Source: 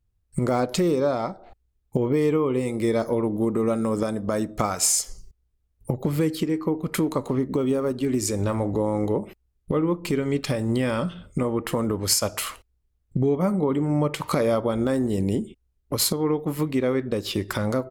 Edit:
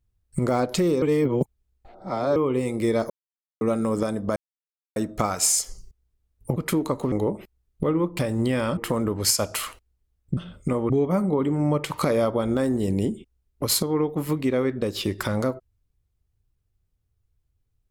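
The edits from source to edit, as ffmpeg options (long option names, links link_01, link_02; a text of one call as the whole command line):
ffmpeg -i in.wav -filter_complex "[0:a]asplit=12[link_01][link_02][link_03][link_04][link_05][link_06][link_07][link_08][link_09][link_10][link_11][link_12];[link_01]atrim=end=1.022[link_13];[link_02]atrim=start=1.018:end=2.362,asetpts=PTS-STARTPTS,areverse[link_14];[link_03]atrim=start=2.358:end=3.1,asetpts=PTS-STARTPTS,afade=type=out:start_time=0.738:duration=0.004:curve=hsin[link_15];[link_04]atrim=start=3.1:end=3.61,asetpts=PTS-STARTPTS,volume=0[link_16];[link_05]atrim=start=3.61:end=4.36,asetpts=PTS-STARTPTS,afade=type=in:duration=0.004:curve=hsin,afade=type=out:start_time=0.746:duration=0.004:curve=hsin,apad=pad_dur=0.6[link_17];[link_06]atrim=start=4.36:end=5.962,asetpts=PTS-STARTPTS,afade=type=in:duration=0.004:curve=hsin[link_18];[link_07]atrim=start=6.818:end=7.382[link_19];[link_08]atrim=start=8.998:end=10.072[link_20];[link_09]atrim=start=10.488:end=11.072[link_21];[link_10]atrim=start=11.598:end=13.202[link_22];[link_11]atrim=start=11.068:end=11.602[link_23];[link_12]atrim=start=13.198[link_24];[link_13][link_14]acrossfade=duration=0.004:curve1=hsin:curve2=hsin[link_25];[link_15][link_16][link_17][link_18]concat=n=4:v=0:a=1[link_26];[link_25][link_26]acrossfade=duration=0.004:curve1=hsin:curve2=hsin[link_27];[link_27][link_19]acrossfade=duration=0.004:curve1=hsin:curve2=hsin[link_28];[link_28][link_20]acrossfade=duration=0.004:curve1=hsin:curve2=hsin[link_29];[link_29][link_21]acrossfade=duration=0.004:curve1=hsin:curve2=hsin[link_30];[link_30][link_22]acrossfade=duration=0.004:curve1=hsin:curve2=hsin[link_31];[link_31][link_23]acrossfade=duration=0.004:curve1=hsin:curve2=hsin[link_32];[link_32][link_24]acrossfade=duration=0.004:curve1=hsin:curve2=hsin" out.wav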